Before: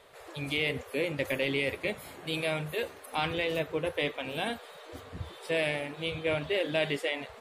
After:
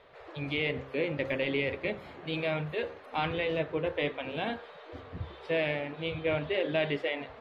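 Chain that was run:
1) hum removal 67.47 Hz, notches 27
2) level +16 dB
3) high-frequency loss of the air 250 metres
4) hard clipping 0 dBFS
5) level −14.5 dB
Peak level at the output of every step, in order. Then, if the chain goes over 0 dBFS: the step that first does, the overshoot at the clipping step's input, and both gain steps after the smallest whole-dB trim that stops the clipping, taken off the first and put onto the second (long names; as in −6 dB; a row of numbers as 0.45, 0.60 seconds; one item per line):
−16.5, −0.5, −3.0, −3.0, −17.5 dBFS
no step passes full scale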